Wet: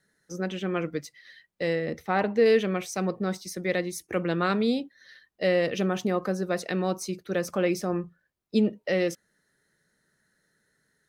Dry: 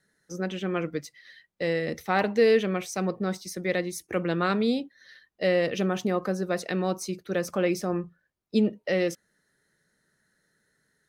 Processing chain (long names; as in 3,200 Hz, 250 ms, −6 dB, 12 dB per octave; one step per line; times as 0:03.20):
0:01.75–0:02.46: high-shelf EQ 3,000 Hz −9.5 dB